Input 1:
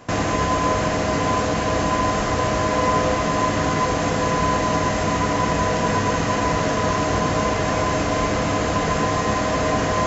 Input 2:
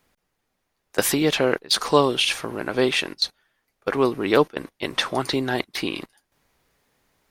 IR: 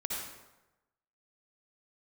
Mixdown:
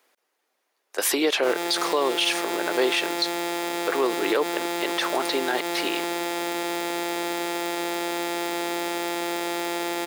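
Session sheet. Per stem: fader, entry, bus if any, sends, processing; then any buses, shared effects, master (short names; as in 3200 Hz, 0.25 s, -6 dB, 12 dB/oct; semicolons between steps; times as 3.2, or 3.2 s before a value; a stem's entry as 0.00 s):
-4.5 dB, 1.35 s, send -5.5 dB, sample sorter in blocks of 256 samples; notch 4200 Hz, Q 11; hard clip -18 dBFS, distortion -13 dB
+2.5 dB, 0.00 s, no send, dry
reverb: on, RT60 1.0 s, pre-delay 53 ms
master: HPF 340 Hz 24 dB/oct; limiter -13 dBFS, peak gain reduction 10 dB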